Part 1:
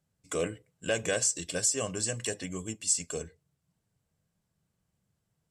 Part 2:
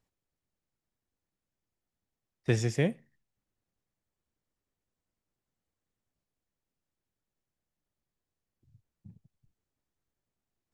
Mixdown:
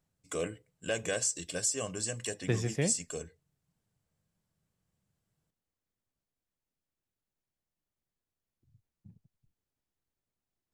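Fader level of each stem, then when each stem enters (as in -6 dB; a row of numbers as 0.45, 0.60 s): -3.5, -3.5 dB; 0.00, 0.00 s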